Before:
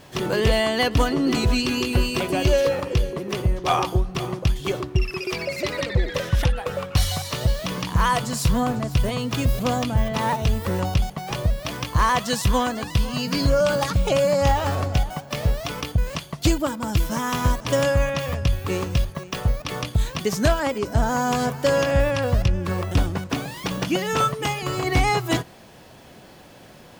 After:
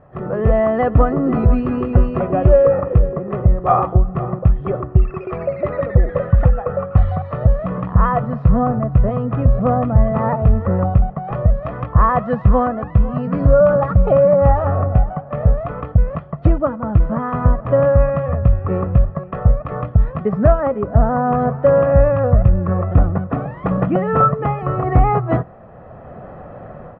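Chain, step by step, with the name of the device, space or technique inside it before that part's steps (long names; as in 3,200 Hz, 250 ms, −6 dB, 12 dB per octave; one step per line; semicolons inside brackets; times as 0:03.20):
0:11.24–0:11.86: high-shelf EQ 4,800 Hz +10.5 dB
comb filter 1.6 ms, depth 49%
dynamic equaliser 210 Hz, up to +4 dB, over −31 dBFS, Q 1.1
action camera in a waterproof case (low-pass filter 1,400 Hz 24 dB per octave; automatic gain control gain up to 13 dB; level −1 dB; AAC 96 kbit/s 24,000 Hz)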